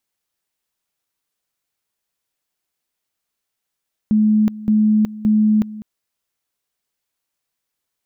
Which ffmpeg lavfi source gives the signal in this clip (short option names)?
-f lavfi -i "aevalsrc='pow(10,(-11-17.5*gte(mod(t,0.57),0.37))/20)*sin(2*PI*214*t)':d=1.71:s=44100"